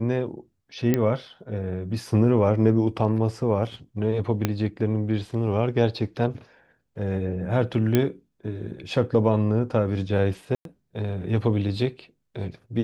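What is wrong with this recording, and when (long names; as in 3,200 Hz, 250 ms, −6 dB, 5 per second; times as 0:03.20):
0:00.94: click −9 dBFS
0:04.45: click −8 dBFS
0:07.95: click −7 dBFS
0:10.55–0:10.65: drop-out 102 ms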